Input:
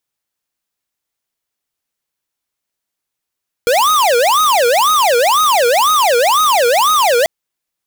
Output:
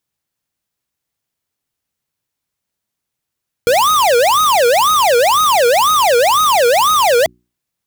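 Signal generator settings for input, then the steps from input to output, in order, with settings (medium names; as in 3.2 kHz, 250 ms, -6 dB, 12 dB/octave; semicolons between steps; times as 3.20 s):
siren wail 469–1260 Hz 2 per s square -11.5 dBFS 3.59 s
block-companded coder 3-bit; peaking EQ 110 Hz +10.5 dB 2.3 oct; hum notches 60/120/180/240/300/360 Hz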